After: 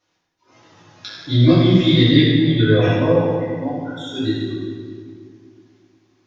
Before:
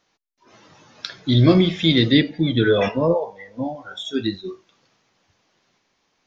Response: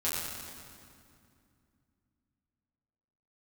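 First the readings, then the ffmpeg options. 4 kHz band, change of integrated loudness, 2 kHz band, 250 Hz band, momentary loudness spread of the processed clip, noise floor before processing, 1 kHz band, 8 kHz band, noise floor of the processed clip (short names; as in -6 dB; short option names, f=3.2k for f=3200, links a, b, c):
+1.5 dB, +3.0 dB, +1.0 dB, +3.5 dB, 17 LU, -70 dBFS, +1.5 dB, n/a, -69 dBFS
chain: -filter_complex "[1:a]atrim=start_sample=2205,asetrate=57330,aresample=44100[a];[0:a][a]afir=irnorm=-1:irlink=0,volume=-4dB"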